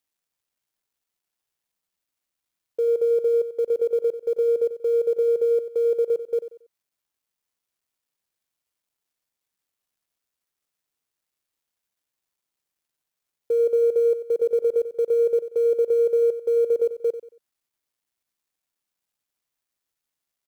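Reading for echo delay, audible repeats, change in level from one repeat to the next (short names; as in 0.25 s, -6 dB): 92 ms, 3, -10.0 dB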